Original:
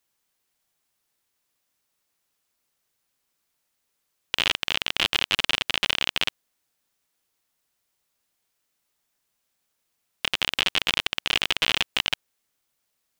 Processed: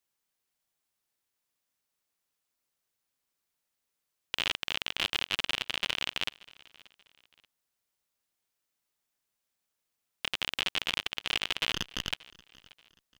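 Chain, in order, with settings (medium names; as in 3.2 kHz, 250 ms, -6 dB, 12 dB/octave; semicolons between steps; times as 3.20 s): 11.72–12.12 s: comb filter that takes the minimum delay 0.63 ms; on a send: feedback delay 582 ms, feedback 35%, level -23 dB; on the sum: trim -7.5 dB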